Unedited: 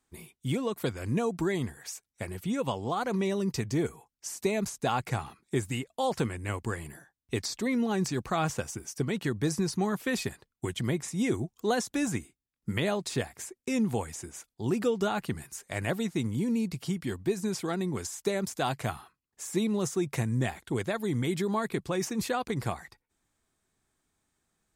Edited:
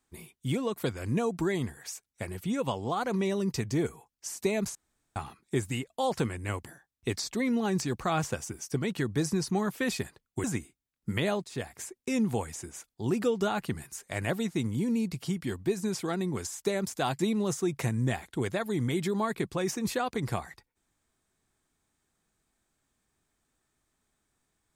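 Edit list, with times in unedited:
4.75–5.16 s: room tone
6.66–6.92 s: delete
10.70–12.04 s: delete
13.04–13.34 s: fade in, from -16 dB
18.79–19.53 s: delete

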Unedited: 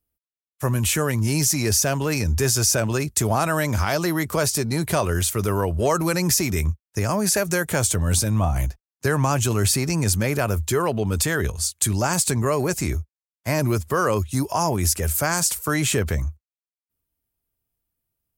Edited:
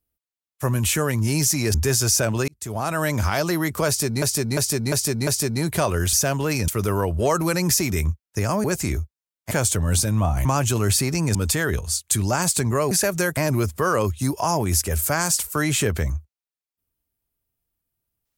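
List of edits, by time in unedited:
1.74–2.29 s: move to 5.28 s
3.03–3.63 s: fade in
4.42–4.77 s: loop, 5 plays
7.24–7.70 s: swap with 12.62–13.49 s
8.64–9.20 s: delete
10.10–11.06 s: delete

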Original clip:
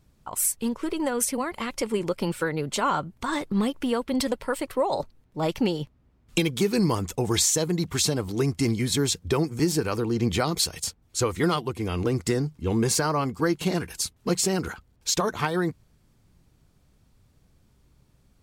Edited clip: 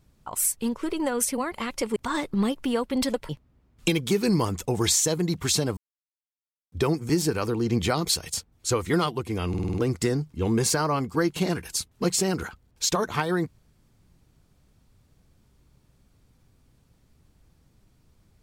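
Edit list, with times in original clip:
1.96–3.14 s: delete
4.47–5.79 s: delete
8.27–9.22 s: mute
11.99 s: stutter 0.05 s, 6 plays

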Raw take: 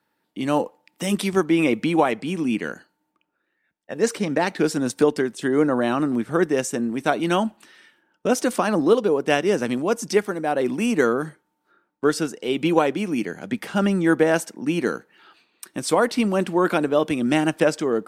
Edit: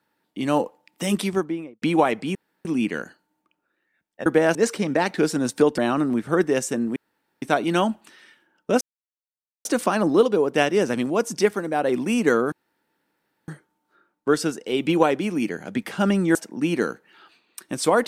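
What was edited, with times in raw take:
1.13–1.82 s: studio fade out
2.35 s: insert room tone 0.30 s
5.19–5.80 s: delete
6.98 s: insert room tone 0.46 s
8.37 s: insert silence 0.84 s
11.24 s: insert room tone 0.96 s
14.11–14.40 s: move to 3.96 s

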